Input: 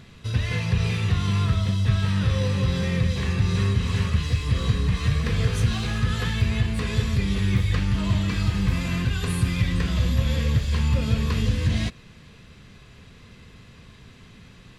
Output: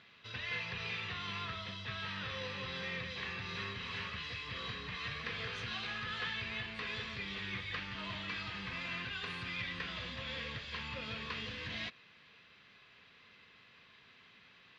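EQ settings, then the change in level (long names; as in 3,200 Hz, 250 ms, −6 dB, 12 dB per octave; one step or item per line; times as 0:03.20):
resonant band-pass 3,600 Hz, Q 0.59
high-frequency loss of the air 240 metres
−1.0 dB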